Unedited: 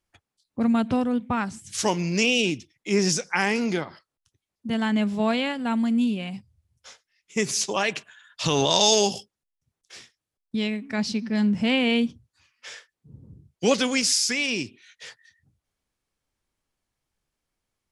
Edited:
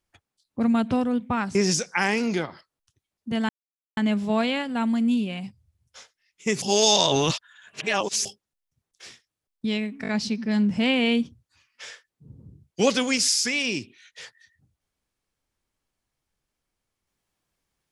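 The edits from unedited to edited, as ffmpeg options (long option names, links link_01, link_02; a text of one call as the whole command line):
ffmpeg -i in.wav -filter_complex "[0:a]asplit=8[link_01][link_02][link_03][link_04][link_05][link_06][link_07][link_08];[link_01]atrim=end=1.552[link_09];[link_02]atrim=start=2.928:end=4.87,asetpts=PTS-STARTPTS,afade=type=out:start_time=1.938:duration=0.004:curve=hsin,apad=pad_dur=0.48[link_10];[link_03]atrim=start=4.87:end=7.522,asetpts=PTS-STARTPTS,afade=type=in:duration=0.004:curve=hsin[link_11];[link_04]atrim=start=7.518:end=9.152,asetpts=PTS-STARTPTS,areverse[link_12];[link_05]atrim=start=9.148:end=10.942[link_13];[link_06]atrim=start=10.918:end=10.942[link_14];[link_07]atrim=start=10.918:end=10.942[link_15];[link_08]atrim=start=10.918[link_16];[link_10][link_11]concat=n=2:v=0:a=1[link_17];[link_09][link_17]acrossfade=duration=0.004:curve1=hsin:curve2=hsin[link_18];[link_18][link_12]acrossfade=duration=0.004:curve1=hsin:curve2=hsin[link_19];[link_19][link_13]acrossfade=duration=0.004:curve1=hsin:curve2=hsin[link_20];[link_20][link_14]acrossfade=duration=0.004:curve1=hsin:curve2=hsin[link_21];[link_21][link_15]acrossfade=duration=0.004:curve1=hsin:curve2=hsin[link_22];[link_22][link_16]acrossfade=duration=0.004:curve1=hsin:curve2=hsin" out.wav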